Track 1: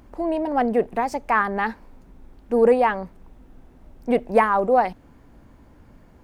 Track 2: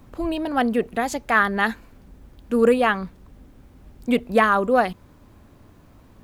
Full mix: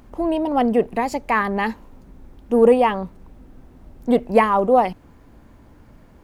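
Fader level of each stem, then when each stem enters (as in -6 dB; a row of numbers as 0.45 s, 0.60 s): +1.5 dB, -7.0 dB; 0.00 s, 0.00 s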